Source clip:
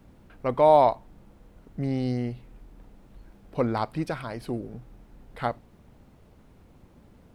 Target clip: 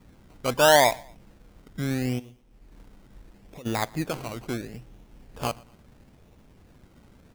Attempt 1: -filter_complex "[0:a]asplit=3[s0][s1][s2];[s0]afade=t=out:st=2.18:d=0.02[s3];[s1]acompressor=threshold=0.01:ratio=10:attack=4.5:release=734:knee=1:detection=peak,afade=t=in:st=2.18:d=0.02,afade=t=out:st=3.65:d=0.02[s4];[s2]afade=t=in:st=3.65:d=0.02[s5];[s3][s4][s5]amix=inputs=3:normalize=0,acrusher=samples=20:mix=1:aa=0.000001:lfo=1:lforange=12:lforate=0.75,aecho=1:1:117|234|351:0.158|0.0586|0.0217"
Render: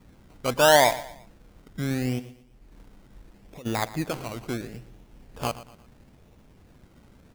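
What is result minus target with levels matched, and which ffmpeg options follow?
echo-to-direct +8.5 dB
-filter_complex "[0:a]asplit=3[s0][s1][s2];[s0]afade=t=out:st=2.18:d=0.02[s3];[s1]acompressor=threshold=0.01:ratio=10:attack=4.5:release=734:knee=1:detection=peak,afade=t=in:st=2.18:d=0.02,afade=t=out:st=3.65:d=0.02[s4];[s2]afade=t=in:st=3.65:d=0.02[s5];[s3][s4][s5]amix=inputs=3:normalize=0,acrusher=samples=20:mix=1:aa=0.000001:lfo=1:lforange=12:lforate=0.75,aecho=1:1:117|234:0.0596|0.022"

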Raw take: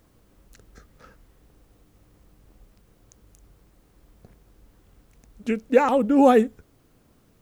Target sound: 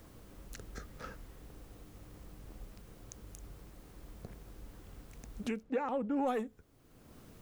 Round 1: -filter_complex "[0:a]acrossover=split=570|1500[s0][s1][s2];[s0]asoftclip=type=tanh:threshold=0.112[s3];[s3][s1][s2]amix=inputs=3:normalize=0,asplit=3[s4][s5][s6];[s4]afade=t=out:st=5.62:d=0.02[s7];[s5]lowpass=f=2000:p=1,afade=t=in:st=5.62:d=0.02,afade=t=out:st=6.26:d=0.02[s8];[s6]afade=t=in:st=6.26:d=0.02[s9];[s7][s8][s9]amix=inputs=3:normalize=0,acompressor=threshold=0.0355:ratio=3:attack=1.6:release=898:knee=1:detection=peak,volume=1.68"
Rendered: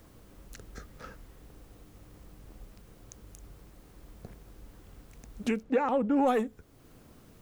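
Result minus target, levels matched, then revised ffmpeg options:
compression: peak gain reduction -7.5 dB
-filter_complex "[0:a]acrossover=split=570|1500[s0][s1][s2];[s0]asoftclip=type=tanh:threshold=0.112[s3];[s3][s1][s2]amix=inputs=3:normalize=0,asplit=3[s4][s5][s6];[s4]afade=t=out:st=5.62:d=0.02[s7];[s5]lowpass=f=2000:p=1,afade=t=in:st=5.62:d=0.02,afade=t=out:st=6.26:d=0.02[s8];[s6]afade=t=in:st=6.26:d=0.02[s9];[s7][s8][s9]amix=inputs=3:normalize=0,acompressor=threshold=0.01:ratio=3:attack=1.6:release=898:knee=1:detection=peak,volume=1.68"

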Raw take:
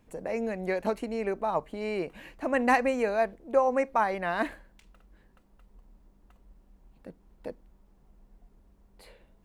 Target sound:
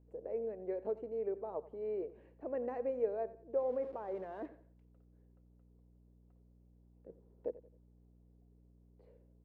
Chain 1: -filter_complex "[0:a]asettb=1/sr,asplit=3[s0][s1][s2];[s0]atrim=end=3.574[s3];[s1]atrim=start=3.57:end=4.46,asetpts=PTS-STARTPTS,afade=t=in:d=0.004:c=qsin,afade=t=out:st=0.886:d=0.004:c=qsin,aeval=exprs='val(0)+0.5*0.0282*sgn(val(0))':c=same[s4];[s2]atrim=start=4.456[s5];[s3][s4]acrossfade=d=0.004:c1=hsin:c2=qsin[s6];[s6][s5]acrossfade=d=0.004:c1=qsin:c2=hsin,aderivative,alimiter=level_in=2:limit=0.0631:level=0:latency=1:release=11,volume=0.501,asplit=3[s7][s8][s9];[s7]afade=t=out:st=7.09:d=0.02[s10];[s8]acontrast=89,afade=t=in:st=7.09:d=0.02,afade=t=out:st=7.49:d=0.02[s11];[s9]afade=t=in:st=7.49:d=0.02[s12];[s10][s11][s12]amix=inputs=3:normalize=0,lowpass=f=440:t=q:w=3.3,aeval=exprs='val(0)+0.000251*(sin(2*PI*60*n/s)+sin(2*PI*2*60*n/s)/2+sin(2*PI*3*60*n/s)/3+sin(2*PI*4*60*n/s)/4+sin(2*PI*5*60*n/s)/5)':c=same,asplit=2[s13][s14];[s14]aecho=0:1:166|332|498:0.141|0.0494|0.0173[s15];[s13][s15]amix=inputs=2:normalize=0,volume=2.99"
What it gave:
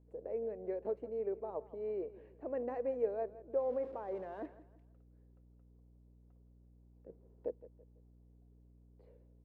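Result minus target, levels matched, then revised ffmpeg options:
echo 77 ms late
-filter_complex "[0:a]asettb=1/sr,asplit=3[s0][s1][s2];[s0]atrim=end=3.574[s3];[s1]atrim=start=3.57:end=4.46,asetpts=PTS-STARTPTS,afade=t=in:d=0.004:c=qsin,afade=t=out:st=0.886:d=0.004:c=qsin,aeval=exprs='val(0)+0.5*0.0282*sgn(val(0))':c=same[s4];[s2]atrim=start=4.456[s5];[s3][s4]acrossfade=d=0.004:c1=hsin:c2=qsin[s6];[s6][s5]acrossfade=d=0.004:c1=qsin:c2=hsin,aderivative,alimiter=level_in=2:limit=0.0631:level=0:latency=1:release=11,volume=0.501,asplit=3[s7][s8][s9];[s7]afade=t=out:st=7.09:d=0.02[s10];[s8]acontrast=89,afade=t=in:st=7.09:d=0.02,afade=t=out:st=7.49:d=0.02[s11];[s9]afade=t=in:st=7.49:d=0.02[s12];[s10][s11][s12]amix=inputs=3:normalize=0,lowpass=f=440:t=q:w=3.3,aeval=exprs='val(0)+0.000251*(sin(2*PI*60*n/s)+sin(2*PI*2*60*n/s)/2+sin(2*PI*3*60*n/s)/3+sin(2*PI*4*60*n/s)/4+sin(2*PI*5*60*n/s)/5)':c=same,asplit=2[s13][s14];[s14]aecho=0:1:89|178|267:0.141|0.0494|0.0173[s15];[s13][s15]amix=inputs=2:normalize=0,volume=2.99"

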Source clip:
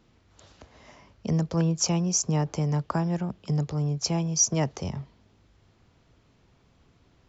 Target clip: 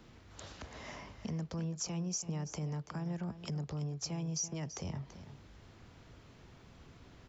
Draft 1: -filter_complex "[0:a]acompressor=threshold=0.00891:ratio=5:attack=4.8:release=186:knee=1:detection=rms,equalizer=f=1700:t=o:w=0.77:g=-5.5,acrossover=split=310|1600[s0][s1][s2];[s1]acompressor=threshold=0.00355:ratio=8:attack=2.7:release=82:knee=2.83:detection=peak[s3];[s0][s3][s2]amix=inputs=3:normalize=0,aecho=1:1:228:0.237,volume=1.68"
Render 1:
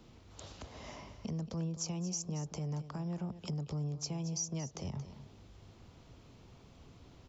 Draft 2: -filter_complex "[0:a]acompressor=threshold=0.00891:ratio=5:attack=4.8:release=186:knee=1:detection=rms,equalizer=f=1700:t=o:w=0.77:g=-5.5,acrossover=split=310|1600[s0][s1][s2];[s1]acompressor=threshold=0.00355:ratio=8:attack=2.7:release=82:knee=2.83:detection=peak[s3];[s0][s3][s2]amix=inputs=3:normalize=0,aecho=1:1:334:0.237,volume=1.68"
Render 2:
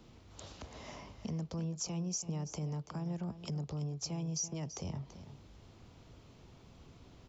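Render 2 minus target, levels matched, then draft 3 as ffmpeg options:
2 kHz band -4.5 dB
-filter_complex "[0:a]acompressor=threshold=0.00891:ratio=5:attack=4.8:release=186:knee=1:detection=rms,equalizer=f=1700:t=o:w=0.77:g=2,acrossover=split=310|1600[s0][s1][s2];[s1]acompressor=threshold=0.00355:ratio=8:attack=2.7:release=82:knee=2.83:detection=peak[s3];[s0][s3][s2]amix=inputs=3:normalize=0,aecho=1:1:334:0.237,volume=1.68"

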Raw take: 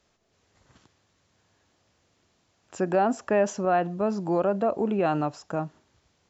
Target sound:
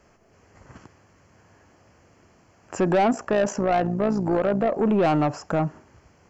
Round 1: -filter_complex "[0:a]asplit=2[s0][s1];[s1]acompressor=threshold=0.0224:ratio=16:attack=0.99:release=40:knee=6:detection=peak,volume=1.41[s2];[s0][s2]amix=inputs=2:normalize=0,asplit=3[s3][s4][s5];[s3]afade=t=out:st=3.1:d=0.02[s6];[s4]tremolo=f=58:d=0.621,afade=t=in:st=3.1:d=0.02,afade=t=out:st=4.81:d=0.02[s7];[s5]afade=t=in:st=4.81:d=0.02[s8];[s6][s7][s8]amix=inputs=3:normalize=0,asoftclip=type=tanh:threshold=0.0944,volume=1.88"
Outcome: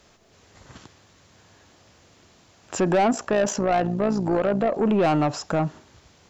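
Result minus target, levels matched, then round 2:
4 kHz band +3.5 dB
-filter_complex "[0:a]asplit=2[s0][s1];[s1]acompressor=threshold=0.0224:ratio=16:attack=0.99:release=40:knee=6:detection=peak,lowpass=f=3700:w=0.5412,lowpass=f=3700:w=1.3066,volume=1.41[s2];[s0][s2]amix=inputs=2:normalize=0,asplit=3[s3][s4][s5];[s3]afade=t=out:st=3.1:d=0.02[s6];[s4]tremolo=f=58:d=0.621,afade=t=in:st=3.1:d=0.02,afade=t=out:st=4.81:d=0.02[s7];[s5]afade=t=in:st=4.81:d=0.02[s8];[s6][s7][s8]amix=inputs=3:normalize=0,asoftclip=type=tanh:threshold=0.0944,volume=1.88"

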